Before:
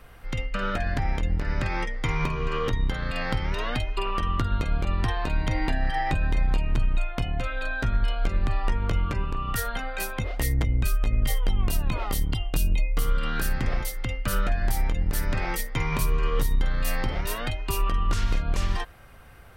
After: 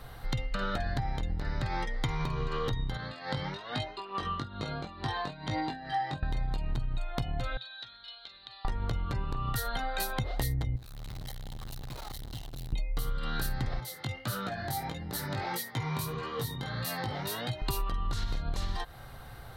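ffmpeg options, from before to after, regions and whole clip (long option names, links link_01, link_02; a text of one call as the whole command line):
ffmpeg -i in.wav -filter_complex "[0:a]asettb=1/sr,asplit=3[link_01][link_02][link_03];[link_01]atrim=end=2.974[link_04];[link_02]atrim=start=2.97:end=6.23,asetpts=PTS-STARTPTS,afade=type=in:duration=0.004:curve=qsin,afade=type=out:start_time=3.256:duration=0.004:curve=qsin,tremolo=f=2.3:d=0.8,flanger=delay=19:depth=2.1:speed=1.1,highpass=140,lowpass=7300[link_05];[link_03]atrim=start=6.226[link_06];[link_04][link_05]acrossfade=duration=0.004:curve1=hsin:curve2=qsin[link_07];[link_07][link_06]acrossfade=duration=0.004:curve1=qsin:curve2=hsin,asettb=1/sr,asplit=3[link_08][link_09][link_10];[link_08]atrim=end=7.574[link_11];[link_09]atrim=start=7.57:end=8.65,asetpts=PTS-STARTPTS,afade=type=in:duration=0.004:curve=qsin,afade=type=out:start_time=1.076:duration=0.004:curve=qsin,bandpass=frequency=3800:width_type=q:width=4.1,aemphasis=mode=reproduction:type=50fm[link_12];[link_10]atrim=start=8.646[link_13];[link_11][link_12]acrossfade=duration=0.004:curve1=hsin:curve2=qsin[link_14];[link_14][link_13]acrossfade=duration=0.004:curve1=qsin:curve2=hsin,asettb=1/sr,asplit=3[link_15][link_16][link_17];[link_15]atrim=end=10.764[link_18];[link_16]atrim=start=10.76:end=12.73,asetpts=PTS-STARTPTS,afade=type=in:duration=0.004:curve=qsin,afade=type=out:start_time=1.966:duration=0.004:curve=qsin,highshelf=frequency=11000:gain=-6.5,acrusher=bits=6:dc=4:mix=0:aa=0.000001,aeval=exprs='(tanh(112*val(0)+0.25)-tanh(0.25))/112':channel_layout=same[link_19];[link_17]atrim=start=12.726[link_20];[link_18][link_19]acrossfade=duration=0.004:curve1=hsin:curve2=qsin[link_21];[link_21][link_20]acrossfade=duration=0.004:curve1=qsin:curve2=hsin,asettb=1/sr,asplit=3[link_22][link_23][link_24];[link_22]atrim=end=13.804[link_25];[link_23]atrim=start=13.8:end=17.62,asetpts=PTS-STARTPTS,afade=type=in:duration=0.004:curve=qsin,afade=type=out:start_time=3.816:duration=0.004:curve=qsin,highpass=frequency=91:width=0.5412,highpass=frequency=91:width=1.3066,acompressor=threshold=-36dB:ratio=1.5:attack=3.2:release=140:knee=1:detection=peak,flanger=delay=16:depth=4.6:speed=1.6[link_26];[link_24]atrim=start=17.616[link_27];[link_25][link_26]acrossfade=duration=0.004:curve1=hsin:curve2=qsin[link_28];[link_28][link_27]acrossfade=duration=0.004:curve1=qsin:curve2=hsin,equalizer=frequency=125:width_type=o:width=0.33:gain=9,equalizer=frequency=800:width_type=o:width=0.33:gain=6,equalizer=frequency=2500:width_type=o:width=0.33:gain=-7,equalizer=frequency=4000:width_type=o:width=0.33:gain=11,equalizer=frequency=12500:width_type=o:width=0.33:gain=4,acompressor=threshold=-30dB:ratio=6,volume=1.5dB" out.wav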